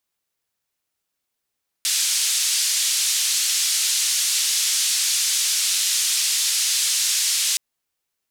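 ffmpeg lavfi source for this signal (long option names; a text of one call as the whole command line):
ffmpeg -f lavfi -i "anoisesrc=color=white:duration=5.72:sample_rate=44100:seed=1,highpass=frequency=3600,lowpass=frequency=8100,volume=-9.4dB" out.wav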